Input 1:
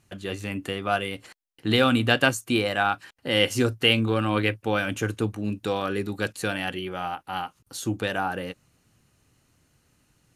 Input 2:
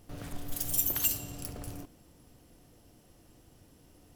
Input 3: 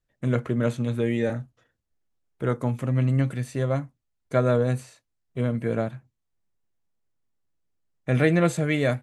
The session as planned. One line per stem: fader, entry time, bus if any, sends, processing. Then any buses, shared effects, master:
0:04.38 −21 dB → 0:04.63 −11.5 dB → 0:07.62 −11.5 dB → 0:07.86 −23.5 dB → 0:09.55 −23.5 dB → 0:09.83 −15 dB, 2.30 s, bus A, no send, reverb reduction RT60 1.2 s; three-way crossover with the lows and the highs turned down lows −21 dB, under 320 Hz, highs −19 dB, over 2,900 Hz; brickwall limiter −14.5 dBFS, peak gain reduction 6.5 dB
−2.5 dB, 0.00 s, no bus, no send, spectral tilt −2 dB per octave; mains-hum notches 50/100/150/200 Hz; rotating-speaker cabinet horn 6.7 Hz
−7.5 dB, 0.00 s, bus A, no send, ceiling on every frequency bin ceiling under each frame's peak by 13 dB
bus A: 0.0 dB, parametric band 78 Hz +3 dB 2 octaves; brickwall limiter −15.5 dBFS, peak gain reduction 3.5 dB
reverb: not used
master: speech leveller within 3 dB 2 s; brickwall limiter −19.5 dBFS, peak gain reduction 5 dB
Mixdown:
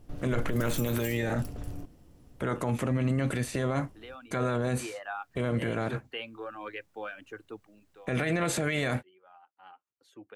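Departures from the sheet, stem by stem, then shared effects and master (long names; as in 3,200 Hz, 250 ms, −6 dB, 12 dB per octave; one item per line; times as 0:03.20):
stem 2: missing rotating-speaker cabinet horn 6.7 Hz
stem 3 −7.5 dB → +3.5 dB
master: missing speech leveller within 3 dB 2 s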